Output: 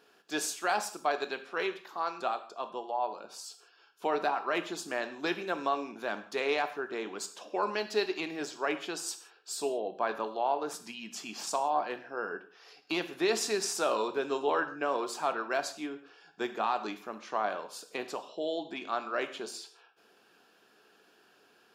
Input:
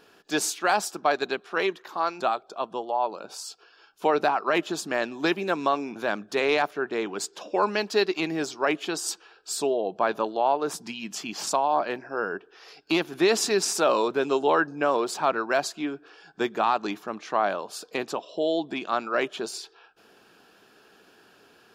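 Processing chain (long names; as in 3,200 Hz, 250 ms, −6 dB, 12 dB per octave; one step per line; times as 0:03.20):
high-pass filter 220 Hz 6 dB per octave
reverb whose tail is shaped and stops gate 200 ms falling, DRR 8 dB
level −7 dB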